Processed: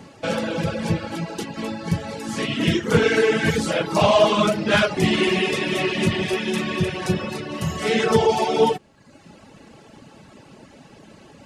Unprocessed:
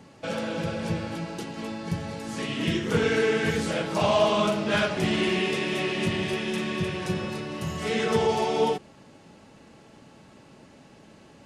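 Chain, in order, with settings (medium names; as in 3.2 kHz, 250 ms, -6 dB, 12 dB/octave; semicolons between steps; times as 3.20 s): reverb removal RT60 0.9 s; trim +7.5 dB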